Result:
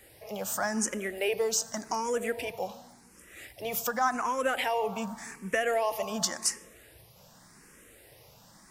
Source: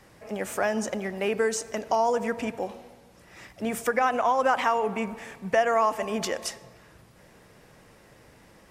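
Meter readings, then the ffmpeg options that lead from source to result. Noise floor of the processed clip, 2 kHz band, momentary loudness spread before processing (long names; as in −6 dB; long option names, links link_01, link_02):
−57 dBFS, −2.5 dB, 12 LU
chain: -filter_complex "[0:a]crystalizer=i=2.5:c=0,asplit=2[link_01][link_02];[link_02]asoftclip=type=tanh:threshold=-21.5dB,volume=-9.5dB[link_03];[link_01][link_03]amix=inputs=2:normalize=0,asplit=2[link_04][link_05];[link_05]afreqshift=0.88[link_06];[link_04][link_06]amix=inputs=2:normalize=1,volume=-3.5dB"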